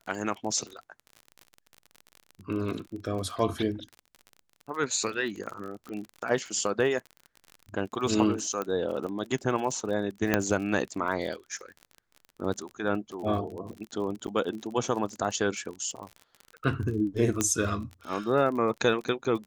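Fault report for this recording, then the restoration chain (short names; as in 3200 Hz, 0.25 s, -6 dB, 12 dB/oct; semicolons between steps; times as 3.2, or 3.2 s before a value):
crackle 36/s -35 dBFS
8.62 pop -18 dBFS
10.34 pop -8 dBFS
14.27–14.28 gap 8.9 ms
17.41 pop -11 dBFS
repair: de-click; interpolate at 14.27, 8.9 ms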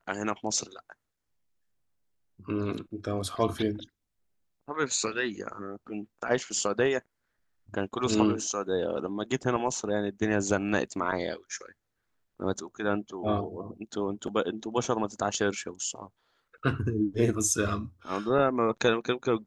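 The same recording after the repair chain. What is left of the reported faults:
17.41 pop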